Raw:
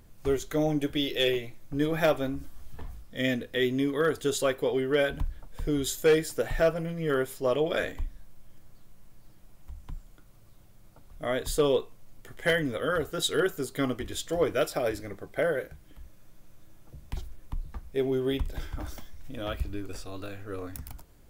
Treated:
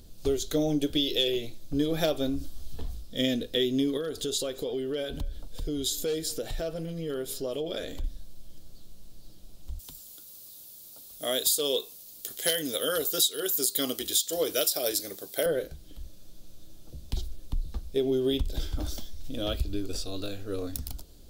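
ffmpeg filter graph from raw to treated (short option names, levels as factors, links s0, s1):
-filter_complex "[0:a]asettb=1/sr,asplit=3[s0][s1][s2];[s0]atrim=end=3.974[s3];[s1]atrim=start=3.97:end=8.04,asetpts=PTS-STARTPTS,afade=t=in:d=0.004:c=qsin,afade=t=out:st=4.066:d=0.004:c=qsin,acompressor=threshold=0.0178:ratio=3:attack=3.2:release=140:knee=1:detection=peak,aecho=1:1:226:0.0668,atrim=end_sample=179487[s4];[s2]atrim=start=8.036[s5];[s3][s4]acrossfade=d=0.004:c1=hsin:c2=qsin[s6];[s6][s5]acrossfade=d=0.004:c1=qsin:c2=hsin,asettb=1/sr,asplit=3[s7][s8][s9];[s7]atrim=end=9.794[s10];[s8]atrim=start=9.79:end=15.46,asetpts=PTS-STARTPTS,afade=t=in:d=0.004:c=qsin,afade=t=out:st=5.666:d=0.004:c=qsin,highpass=f=460:p=1,aemphasis=mode=production:type=75fm[s11];[s9]atrim=start=15.456[s12];[s10][s11]acrossfade=d=0.004:c1=hsin:c2=qsin[s13];[s13][s12]acrossfade=d=0.004:c1=qsin:c2=hsin,equalizer=f=125:t=o:w=1:g=-6,equalizer=f=1000:t=o:w=1:g=-9,equalizer=f=2000:t=o:w=1:g=-12,equalizer=f=4000:t=o:w=1:g=9,acompressor=threshold=0.0398:ratio=10,volume=2"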